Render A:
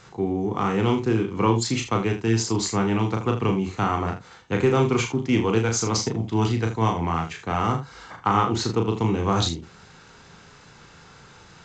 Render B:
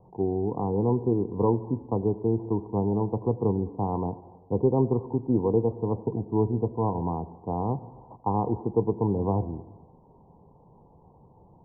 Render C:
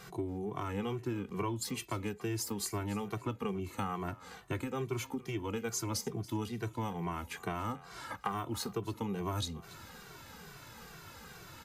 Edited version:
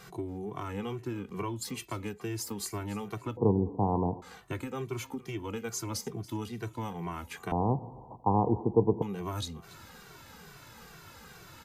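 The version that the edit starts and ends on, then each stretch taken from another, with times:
C
0:03.37–0:04.22: punch in from B
0:07.52–0:09.02: punch in from B
not used: A

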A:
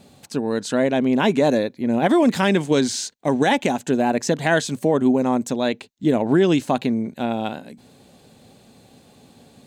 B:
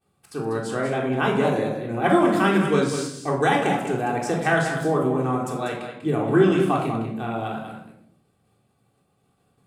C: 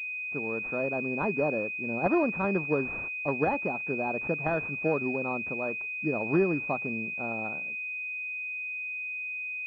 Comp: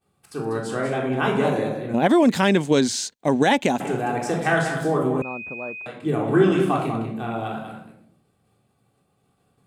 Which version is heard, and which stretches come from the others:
B
0:01.94–0:03.80: punch in from A
0:05.22–0:05.86: punch in from C

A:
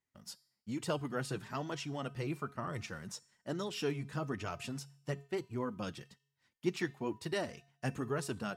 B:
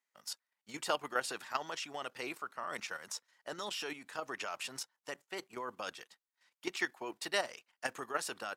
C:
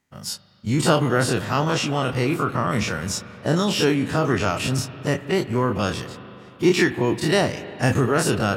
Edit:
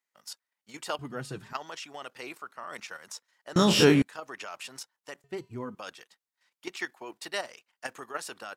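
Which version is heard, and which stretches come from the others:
B
0:00.99–0:01.53: punch in from A
0:03.56–0:04.02: punch in from C
0:05.24–0:05.75: punch in from A

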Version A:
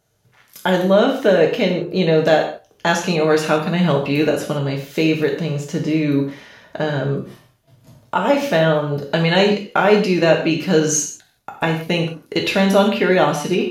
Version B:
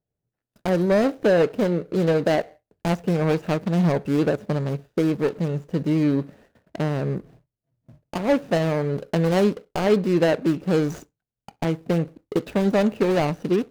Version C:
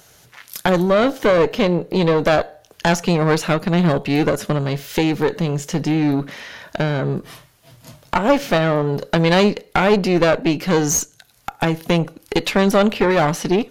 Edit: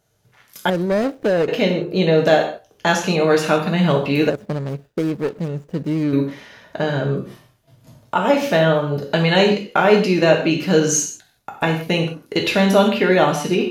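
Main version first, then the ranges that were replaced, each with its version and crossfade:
A
0:00.70–0:01.48: punch in from B
0:04.30–0:06.13: punch in from B
not used: C

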